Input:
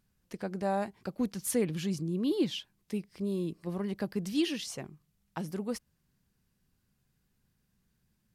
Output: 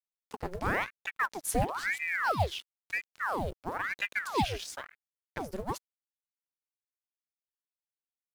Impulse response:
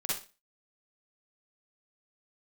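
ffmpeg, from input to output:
-af "aeval=exprs='sgn(val(0))*max(abs(val(0))-0.00316,0)':c=same,acrusher=bits=7:mode=log:mix=0:aa=0.000001,aeval=exprs='val(0)*sin(2*PI*1200*n/s+1200*0.85/0.99*sin(2*PI*0.99*n/s))':c=same,volume=1.5"

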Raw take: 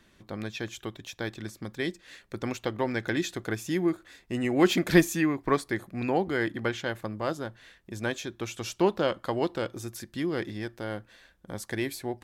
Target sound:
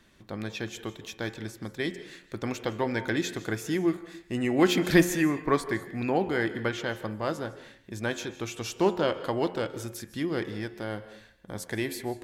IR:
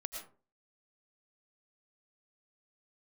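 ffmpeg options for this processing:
-filter_complex "[0:a]bandreject=f=88.73:t=h:w=4,bandreject=f=177.46:t=h:w=4,bandreject=f=266.19:t=h:w=4,bandreject=f=354.92:t=h:w=4,bandreject=f=443.65:t=h:w=4,bandreject=f=532.38:t=h:w=4,bandreject=f=621.11:t=h:w=4,bandreject=f=709.84:t=h:w=4,bandreject=f=798.57:t=h:w=4,bandreject=f=887.3:t=h:w=4,bandreject=f=976.03:t=h:w=4,bandreject=f=1064.76:t=h:w=4,bandreject=f=1153.49:t=h:w=4,bandreject=f=1242.22:t=h:w=4,bandreject=f=1330.95:t=h:w=4,bandreject=f=1419.68:t=h:w=4,bandreject=f=1508.41:t=h:w=4,bandreject=f=1597.14:t=h:w=4,bandreject=f=1685.87:t=h:w=4,bandreject=f=1774.6:t=h:w=4,bandreject=f=1863.33:t=h:w=4,bandreject=f=1952.06:t=h:w=4,bandreject=f=2040.79:t=h:w=4,bandreject=f=2129.52:t=h:w=4,bandreject=f=2218.25:t=h:w=4,bandreject=f=2306.98:t=h:w=4,bandreject=f=2395.71:t=h:w=4,bandreject=f=2484.44:t=h:w=4,bandreject=f=2573.17:t=h:w=4,bandreject=f=2661.9:t=h:w=4,bandreject=f=2750.63:t=h:w=4,bandreject=f=2839.36:t=h:w=4,bandreject=f=2928.09:t=h:w=4,bandreject=f=3016.82:t=h:w=4,bandreject=f=3105.55:t=h:w=4,bandreject=f=3194.28:t=h:w=4,bandreject=f=3283.01:t=h:w=4,asplit=2[s0][s1];[1:a]atrim=start_sample=2205,asetrate=30870,aresample=44100[s2];[s1][s2]afir=irnorm=-1:irlink=0,volume=0.316[s3];[s0][s3]amix=inputs=2:normalize=0,volume=0.841"

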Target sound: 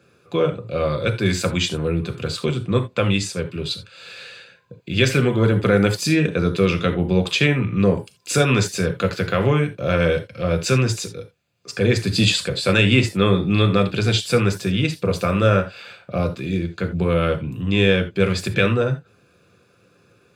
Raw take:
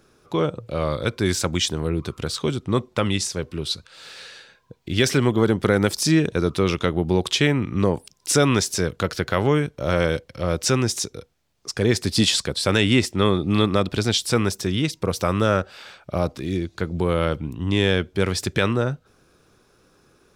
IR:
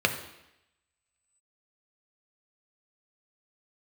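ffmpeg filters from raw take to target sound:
-filter_complex "[0:a]highshelf=f=7800:g=5.5[s0];[1:a]atrim=start_sample=2205,atrim=end_sample=3969[s1];[s0][s1]afir=irnorm=-1:irlink=0,volume=0.299"

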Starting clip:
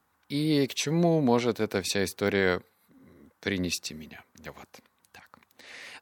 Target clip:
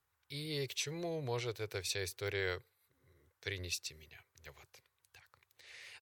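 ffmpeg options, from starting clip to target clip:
-af "firequalizer=gain_entry='entry(130,0);entry(200,-29);entry(380,-6);entry(680,-11);entry(2300,-2)':delay=0.05:min_phase=1,volume=0.531"

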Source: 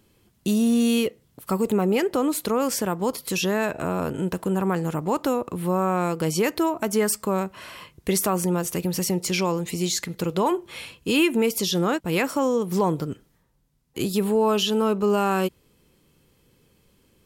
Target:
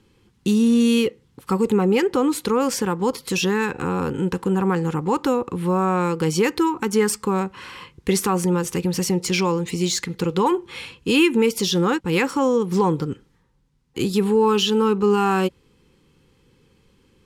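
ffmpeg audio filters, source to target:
-af "asuperstop=centerf=640:order=8:qfactor=3.5,adynamicsmooth=sensitivity=4:basefreq=7400,volume=1.5"

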